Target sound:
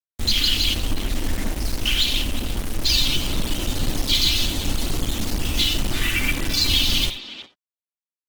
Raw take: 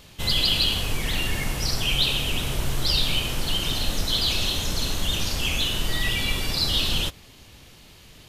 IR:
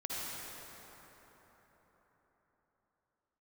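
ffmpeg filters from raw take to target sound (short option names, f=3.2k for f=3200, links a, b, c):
-filter_complex "[0:a]lowpass=9.6k,afwtdn=0.0562,highshelf=f=3.3k:g=6,aecho=1:1:3.4:1,adynamicequalizer=threshold=0.0158:dfrequency=670:dqfactor=0.71:tfrequency=670:tqfactor=0.71:attack=5:release=100:ratio=0.375:range=1.5:mode=boostabove:tftype=bell,acrossover=split=180|5000[a][b][c];[a]acompressor=threshold=-21dB:ratio=4[d];[b]acompressor=threshold=-20dB:ratio=4[e];[c]acompressor=threshold=-32dB:ratio=4[f];[d][e][f]amix=inputs=3:normalize=0,acrusher=bits=4:mix=0:aa=0.000001,asplit=2[g][h];[h]adelay=360,highpass=300,lowpass=3.4k,asoftclip=type=hard:threshold=-15.5dB,volume=-11dB[i];[g][i]amix=inputs=2:normalize=0,asplit=2[j][k];[1:a]atrim=start_sample=2205,atrim=end_sample=3969[l];[k][l]afir=irnorm=-1:irlink=0,volume=-6.5dB[m];[j][m]amix=inputs=2:normalize=0" -ar 48000 -c:a libopus -b:a 16k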